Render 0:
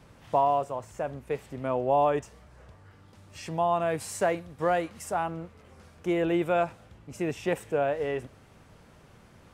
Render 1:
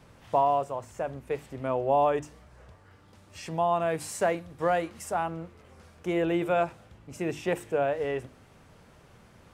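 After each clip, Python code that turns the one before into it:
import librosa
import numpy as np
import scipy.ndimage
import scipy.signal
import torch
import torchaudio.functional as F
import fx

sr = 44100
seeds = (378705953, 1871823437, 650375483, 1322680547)

y = fx.hum_notches(x, sr, base_hz=50, count=7)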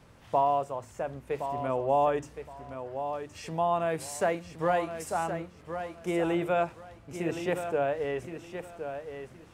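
y = fx.echo_feedback(x, sr, ms=1068, feedback_pct=22, wet_db=-9.0)
y = y * librosa.db_to_amplitude(-1.5)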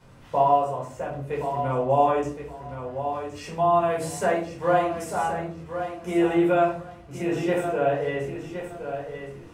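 y = fx.room_shoebox(x, sr, seeds[0], volume_m3=420.0, walls='furnished', distance_m=4.8)
y = y * librosa.db_to_amplitude(-3.5)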